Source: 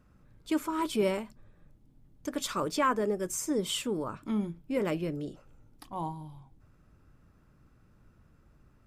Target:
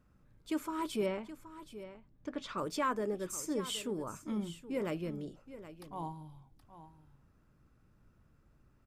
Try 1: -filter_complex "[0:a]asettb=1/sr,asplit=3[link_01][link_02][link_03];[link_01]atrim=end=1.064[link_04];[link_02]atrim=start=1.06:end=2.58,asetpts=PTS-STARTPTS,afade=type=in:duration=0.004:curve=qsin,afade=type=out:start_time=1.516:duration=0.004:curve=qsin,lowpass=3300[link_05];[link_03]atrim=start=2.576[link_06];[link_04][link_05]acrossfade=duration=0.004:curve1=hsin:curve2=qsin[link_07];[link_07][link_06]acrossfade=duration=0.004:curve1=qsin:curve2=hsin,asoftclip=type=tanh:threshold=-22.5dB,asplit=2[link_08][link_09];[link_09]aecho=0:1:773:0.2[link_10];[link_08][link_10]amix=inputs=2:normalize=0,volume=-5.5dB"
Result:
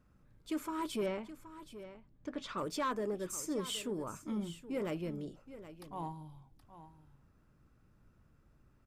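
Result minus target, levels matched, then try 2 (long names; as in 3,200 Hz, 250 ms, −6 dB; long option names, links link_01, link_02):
soft clipping: distortion +16 dB
-filter_complex "[0:a]asettb=1/sr,asplit=3[link_01][link_02][link_03];[link_01]atrim=end=1.064[link_04];[link_02]atrim=start=1.06:end=2.58,asetpts=PTS-STARTPTS,afade=type=in:duration=0.004:curve=qsin,afade=type=out:start_time=1.516:duration=0.004:curve=qsin,lowpass=3300[link_05];[link_03]atrim=start=2.576[link_06];[link_04][link_05]acrossfade=duration=0.004:curve1=hsin:curve2=qsin[link_07];[link_07][link_06]acrossfade=duration=0.004:curve1=qsin:curve2=hsin,asoftclip=type=tanh:threshold=-12.5dB,asplit=2[link_08][link_09];[link_09]aecho=0:1:773:0.2[link_10];[link_08][link_10]amix=inputs=2:normalize=0,volume=-5.5dB"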